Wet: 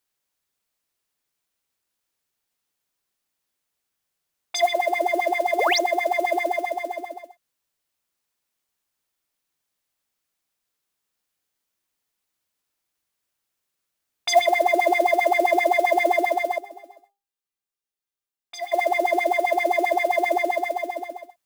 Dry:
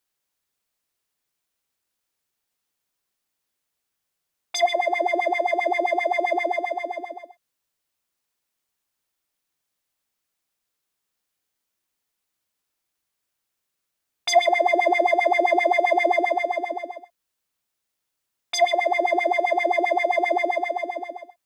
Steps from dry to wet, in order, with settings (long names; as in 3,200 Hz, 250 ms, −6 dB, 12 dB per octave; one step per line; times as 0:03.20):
0:05.59–0:05.79: sound drawn into the spectrogram rise 350–6,800 Hz −22 dBFS
noise that follows the level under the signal 24 dB
0:16.58–0:18.72: tuned comb filter 400 Hz, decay 0.32 s, harmonics all, mix 80%